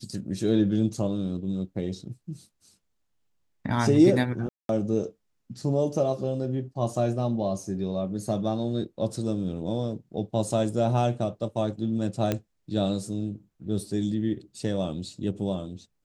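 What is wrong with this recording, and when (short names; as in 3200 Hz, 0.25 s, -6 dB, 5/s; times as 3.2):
4.49–4.69 gap 0.202 s
12.32 pop -12 dBFS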